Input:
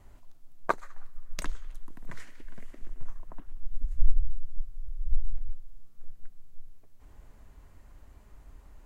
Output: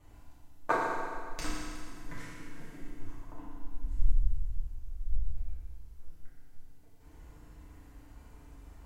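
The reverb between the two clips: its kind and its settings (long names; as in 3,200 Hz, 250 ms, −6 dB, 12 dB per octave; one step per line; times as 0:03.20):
feedback delay network reverb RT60 2 s, low-frequency decay 1.05×, high-frequency decay 0.9×, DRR −9.5 dB
level −7 dB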